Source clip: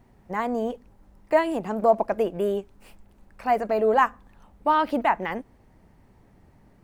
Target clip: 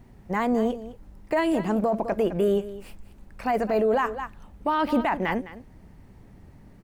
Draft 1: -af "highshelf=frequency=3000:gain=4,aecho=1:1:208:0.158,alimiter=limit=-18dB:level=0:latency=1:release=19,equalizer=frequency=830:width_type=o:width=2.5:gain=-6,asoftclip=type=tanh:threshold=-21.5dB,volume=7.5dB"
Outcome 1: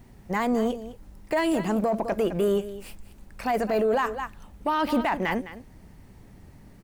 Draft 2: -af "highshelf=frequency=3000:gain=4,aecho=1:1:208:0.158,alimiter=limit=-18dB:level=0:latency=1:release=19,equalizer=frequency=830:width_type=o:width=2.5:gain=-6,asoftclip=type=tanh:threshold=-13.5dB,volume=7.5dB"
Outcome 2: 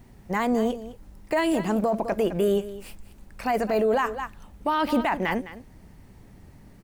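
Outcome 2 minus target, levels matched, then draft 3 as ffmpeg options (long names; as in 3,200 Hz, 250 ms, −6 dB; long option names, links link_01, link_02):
8,000 Hz band +6.5 dB
-af "highshelf=frequency=3000:gain=-3.5,aecho=1:1:208:0.158,alimiter=limit=-18dB:level=0:latency=1:release=19,equalizer=frequency=830:width_type=o:width=2.5:gain=-6,asoftclip=type=tanh:threshold=-13.5dB,volume=7.5dB"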